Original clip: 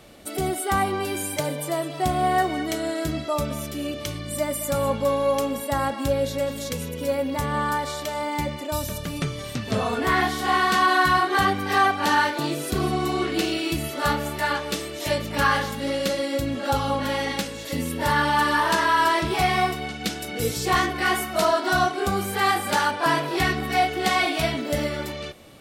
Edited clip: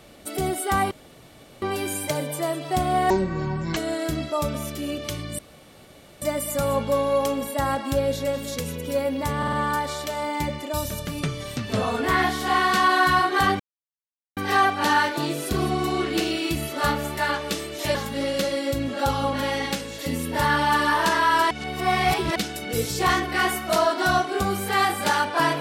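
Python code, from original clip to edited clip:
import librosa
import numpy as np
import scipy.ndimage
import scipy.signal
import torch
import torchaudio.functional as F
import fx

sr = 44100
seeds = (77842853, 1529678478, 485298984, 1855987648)

y = fx.edit(x, sr, fx.insert_room_tone(at_s=0.91, length_s=0.71),
    fx.speed_span(start_s=2.39, length_s=0.34, speed=0.51),
    fx.insert_room_tone(at_s=4.35, length_s=0.83),
    fx.stutter(start_s=7.51, slice_s=0.05, count=4),
    fx.insert_silence(at_s=11.58, length_s=0.77),
    fx.cut(start_s=15.16, length_s=0.45),
    fx.reverse_span(start_s=19.17, length_s=0.85), tone=tone)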